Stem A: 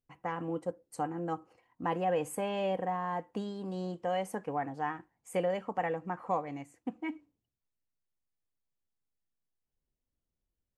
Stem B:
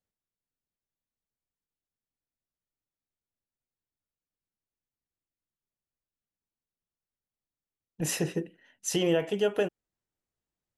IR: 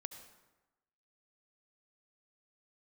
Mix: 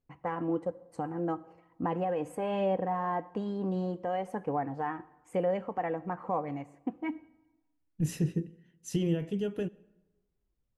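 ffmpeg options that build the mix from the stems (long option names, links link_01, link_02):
-filter_complex "[0:a]lowpass=frequency=1400:poles=1,alimiter=level_in=3dB:limit=-24dB:level=0:latency=1:release=159,volume=-3dB,aphaser=in_gain=1:out_gain=1:delay=3.1:decay=0.27:speed=1.1:type=sinusoidal,volume=2.5dB,asplit=2[link_01][link_02];[link_02]volume=-8dB[link_03];[1:a]asubboost=boost=10:cutoff=220,volume=-13dB,asplit=2[link_04][link_05];[link_05]volume=-10.5dB[link_06];[2:a]atrim=start_sample=2205[link_07];[link_03][link_06]amix=inputs=2:normalize=0[link_08];[link_08][link_07]afir=irnorm=-1:irlink=0[link_09];[link_01][link_04][link_09]amix=inputs=3:normalize=0"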